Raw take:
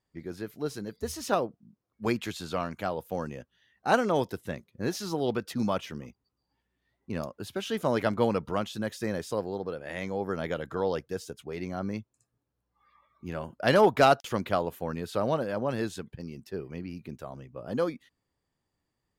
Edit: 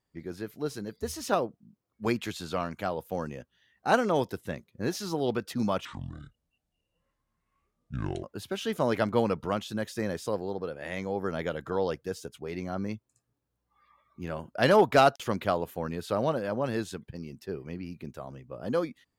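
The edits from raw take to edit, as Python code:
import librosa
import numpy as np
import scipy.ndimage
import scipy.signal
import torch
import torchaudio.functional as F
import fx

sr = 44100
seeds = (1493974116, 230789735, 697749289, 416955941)

y = fx.edit(x, sr, fx.speed_span(start_s=5.85, length_s=1.43, speed=0.6), tone=tone)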